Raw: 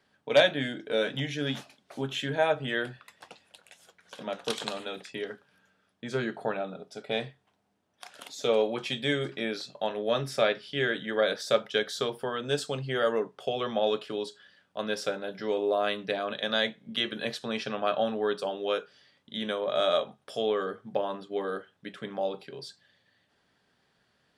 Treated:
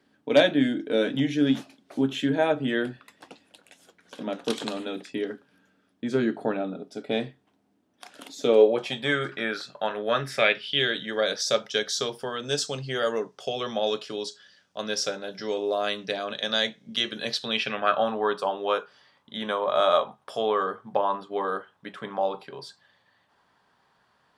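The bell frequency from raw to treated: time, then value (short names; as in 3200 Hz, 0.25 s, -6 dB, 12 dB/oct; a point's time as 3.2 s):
bell +13 dB 0.9 oct
8.48 s 280 Hz
9.17 s 1400 Hz
10.1 s 1400 Hz
11.17 s 5800 Hz
17.26 s 5800 Hz
18.08 s 1000 Hz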